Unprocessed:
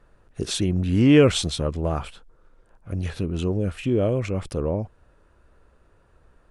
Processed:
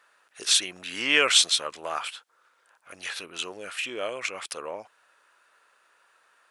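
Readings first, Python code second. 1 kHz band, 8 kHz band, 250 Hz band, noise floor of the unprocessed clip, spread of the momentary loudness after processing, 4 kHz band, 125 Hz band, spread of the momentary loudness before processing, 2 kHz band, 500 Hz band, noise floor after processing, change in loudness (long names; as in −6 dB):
+1.5 dB, +8.0 dB, −20.0 dB, −59 dBFS, 18 LU, +8.0 dB, −33.0 dB, 17 LU, +7.0 dB, −10.5 dB, −66 dBFS, −2.0 dB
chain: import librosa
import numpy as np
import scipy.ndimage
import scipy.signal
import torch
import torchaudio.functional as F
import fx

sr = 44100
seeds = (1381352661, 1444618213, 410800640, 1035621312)

y = scipy.signal.sosfilt(scipy.signal.butter(2, 1400.0, 'highpass', fs=sr, output='sos'), x)
y = F.gain(torch.from_numpy(y), 8.0).numpy()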